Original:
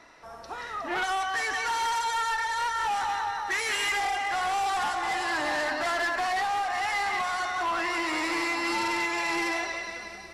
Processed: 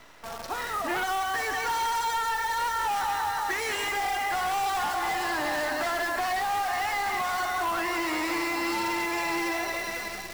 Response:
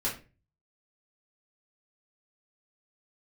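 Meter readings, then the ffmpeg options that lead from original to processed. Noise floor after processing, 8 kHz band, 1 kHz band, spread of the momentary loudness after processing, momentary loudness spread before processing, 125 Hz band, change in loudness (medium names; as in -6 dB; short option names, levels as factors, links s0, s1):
-37 dBFS, +1.0 dB, +0.5 dB, 3 LU, 5 LU, no reading, 0.0 dB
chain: -filter_complex "[0:a]asplit=2[s0][s1];[1:a]atrim=start_sample=2205,adelay=47[s2];[s1][s2]afir=irnorm=-1:irlink=0,volume=0.0473[s3];[s0][s3]amix=inputs=2:normalize=0,acrossover=split=190|950[s4][s5][s6];[s4]acompressor=threshold=0.00251:ratio=4[s7];[s5]acompressor=threshold=0.0158:ratio=4[s8];[s6]acompressor=threshold=0.0141:ratio=4[s9];[s7][s8][s9]amix=inputs=3:normalize=0,acrusher=bits=8:dc=4:mix=0:aa=0.000001,volume=1.88"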